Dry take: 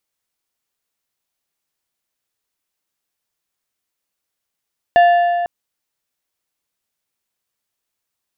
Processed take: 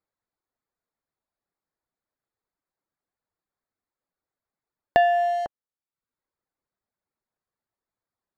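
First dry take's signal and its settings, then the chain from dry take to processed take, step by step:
metal hit plate, length 0.50 s, lowest mode 698 Hz, decay 2.50 s, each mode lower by 10.5 dB, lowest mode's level -6 dB
local Wiener filter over 15 samples; reverb removal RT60 0.65 s; compression 3:1, threshold -17 dBFS

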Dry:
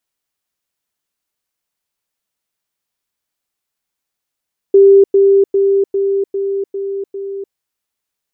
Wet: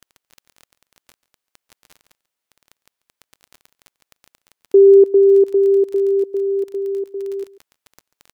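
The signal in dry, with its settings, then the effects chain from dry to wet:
level ladder 394 Hz -3 dBFS, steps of -3 dB, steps 7, 0.30 s 0.10 s
tone controls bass -8 dB, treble -3 dB; crackle 16 per s -27 dBFS; delay 140 ms -19.5 dB

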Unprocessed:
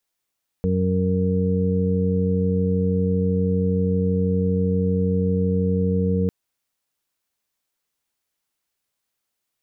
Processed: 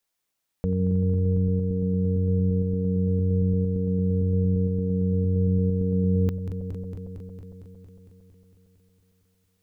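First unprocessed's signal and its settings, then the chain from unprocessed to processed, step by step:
steady additive tone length 5.65 s, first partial 92.6 Hz, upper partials 2.5/-10/-18.5/-1 dB, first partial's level -23 dB
backward echo that repeats 114 ms, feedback 83%, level -12 dB; dynamic bell 360 Hz, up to -6 dB, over -36 dBFS, Q 0.71; gain riding within 4 dB 2 s

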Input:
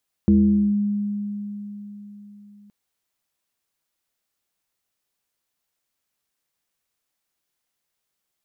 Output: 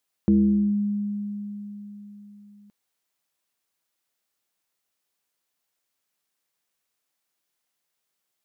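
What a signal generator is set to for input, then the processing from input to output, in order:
FM tone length 2.42 s, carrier 205 Hz, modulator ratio 0.62, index 0.69, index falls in 0.48 s linear, decay 4.05 s, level -11 dB
bass shelf 110 Hz -10.5 dB

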